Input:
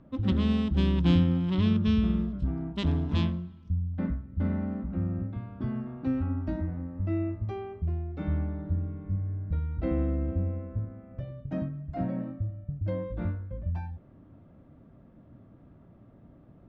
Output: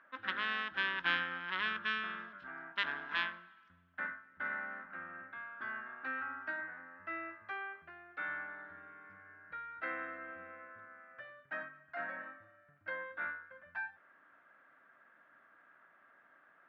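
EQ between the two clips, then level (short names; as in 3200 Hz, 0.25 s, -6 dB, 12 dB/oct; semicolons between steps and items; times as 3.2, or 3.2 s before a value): resonant high-pass 1600 Hz, resonance Q 5.4; air absorption 160 m; high shelf 2900 Hz -10.5 dB; +6.5 dB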